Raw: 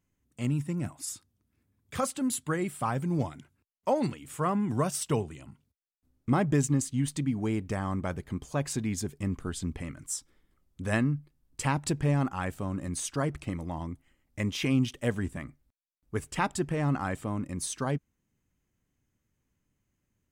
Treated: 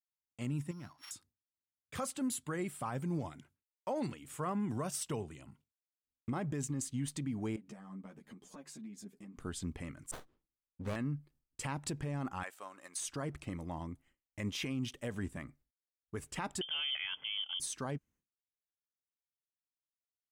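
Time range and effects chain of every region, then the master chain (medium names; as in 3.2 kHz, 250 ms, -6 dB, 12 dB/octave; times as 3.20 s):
0.71–1.11 s: sorted samples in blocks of 8 samples + low-pass 1.7 kHz 6 dB/octave + resonant low shelf 790 Hz -9 dB, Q 1.5
7.56–9.37 s: resonant low shelf 130 Hz -13 dB, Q 3 + compression 5:1, threshold -40 dBFS + three-phase chorus
10.11–10.96 s: level-controlled noise filter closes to 1.2 kHz, open at -29.5 dBFS + doubling 41 ms -8.5 dB + sliding maximum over 17 samples
12.43–13.01 s: high-pass 820 Hz + transient shaper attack +5 dB, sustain -2 dB
16.61–17.60 s: band-stop 1.5 kHz, Q 10 + frequency inversion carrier 3.3 kHz
whole clip: expander -54 dBFS; peak limiter -23 dBFS; bass shelf 130 Hz -3.5 dB; trim -5 dB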